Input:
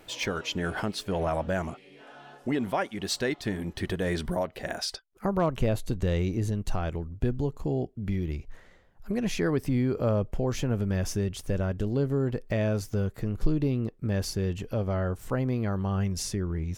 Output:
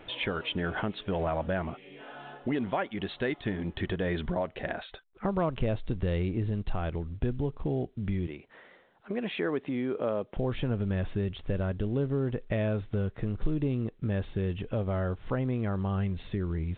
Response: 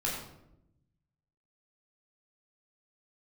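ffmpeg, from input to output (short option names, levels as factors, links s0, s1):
-filter_complex "[0:a]asettb=1/sr,asplit=3[s0][s1][s2];[s0]atrim=end=8.274[s3];[s1]atrim=start=8.27:end=10.37,asetpts=PTS-STARTPTS,afade=t=in:d=0.004:c=qsin,afade=t=out:st=2.096:d=0.004:c=qsin,highpass=280[s4];[s2]atrim=start=10.366[s5];[s3][s4]acrossfade=d=0.004:c1=hsin:c2=qsin[s6];[s6][s5]acrossfade=d=0.004:c1=qsin:c2=hsin,acompressor=threshold=0.0112:ratio=1.5,volume=1.5" -ar 8000 -c:a pcm_mulaw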